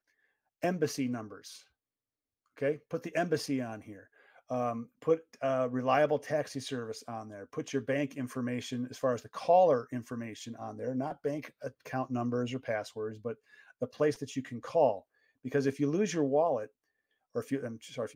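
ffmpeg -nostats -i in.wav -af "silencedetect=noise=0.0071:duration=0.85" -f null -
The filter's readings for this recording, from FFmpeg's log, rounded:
silence_start: 1.58
silence_end: 2.57 | silence_duration: 0.99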